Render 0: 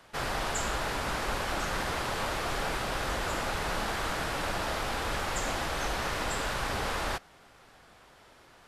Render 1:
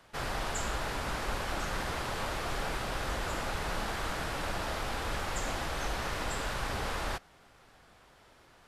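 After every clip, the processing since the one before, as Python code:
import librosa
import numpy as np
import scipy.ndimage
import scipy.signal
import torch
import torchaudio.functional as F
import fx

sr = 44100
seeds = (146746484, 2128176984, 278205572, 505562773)

y = fx.low_shelf(x, sr, hz=140.0, db=4.0)
y = F.gain(torch.from_numpy(y), -3.5).numpy()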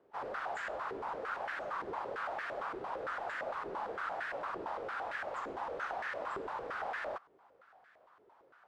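y = fx.filter_held_bandpass(x, sr, hz=8.8, low_hz=400.0, high_hz=1700.0)
y = F.gain(torch.from_numpy(y), 5.0).numpy()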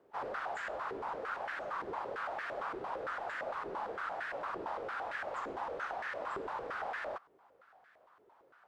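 y = fx.rider(x, sr, range_db=10, speed_s=0.5)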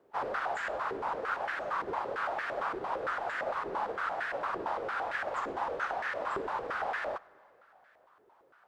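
y = fx.rev_plate(x, sr, seeds[0], rt60_s=3.0, hf_ratio=0.8, predelay_ms=0, drr_db=19.0)
y = fx.upward_expand(y, sr, threshold_db=-48.0, expansion=1.5)
y = F.gain(torch.from_numpy(y), 6.5).numpy()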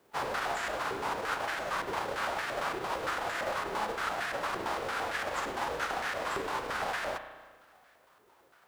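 y = fx.envelope_flatten(x, sr, power=0.6)
y = fx.rev_spring(y, sr, rt60_s=1.3, pass_ms=(33,), chirp_ms=25, drr_db=8.0)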